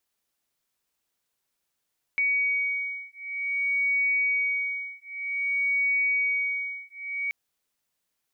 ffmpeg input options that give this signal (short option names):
-f lavfi -i "aevalsrc='0.0447*(sin(2*PI*2250*t)+sin(2*PI*2250.53*t))':d=5.13:s=44100"